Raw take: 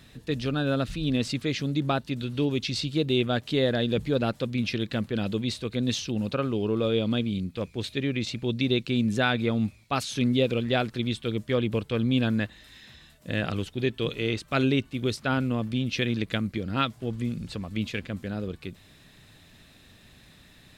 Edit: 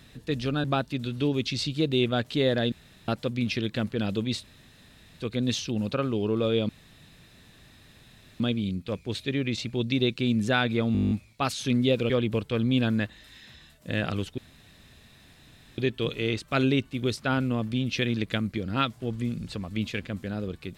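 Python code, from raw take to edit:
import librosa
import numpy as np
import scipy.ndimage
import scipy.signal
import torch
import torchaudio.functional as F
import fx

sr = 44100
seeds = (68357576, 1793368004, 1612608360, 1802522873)

y = fx.edit(x, sr, fx.cut(start_s=0.64, length_s=1.17),
    fx.room_tone_fill(start_s=3.89, length_s=0.36),
    fx.insert_room_tone(at_s=5.6, length_s=0.77),
    fx.insert_room_tone(at_s=7.09, length_s=1.71),
    fx.stutter(start_s=9.62, slice_s=0.02, count=10),
    fx.cut(start_s=10.61, length_s=0.89),
    fx.insert_room_tone(at_s=13.78, length_s=1.4), tone=tone)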